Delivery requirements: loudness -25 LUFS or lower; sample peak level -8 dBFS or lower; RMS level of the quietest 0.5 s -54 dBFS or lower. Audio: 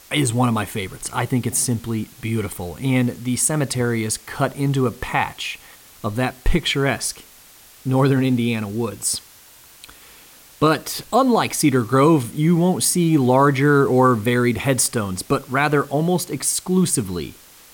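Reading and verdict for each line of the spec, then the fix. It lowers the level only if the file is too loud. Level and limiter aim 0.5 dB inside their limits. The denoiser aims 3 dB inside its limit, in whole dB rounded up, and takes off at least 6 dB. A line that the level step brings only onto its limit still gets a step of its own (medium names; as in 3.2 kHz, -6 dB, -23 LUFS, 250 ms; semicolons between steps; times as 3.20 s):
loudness -19.5 LUFS: fail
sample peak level -5.5 dBFS: fail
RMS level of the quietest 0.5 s -47 dBFS: fail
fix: noise reduction 6 dB, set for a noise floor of -47 dBFS; trim -6 dB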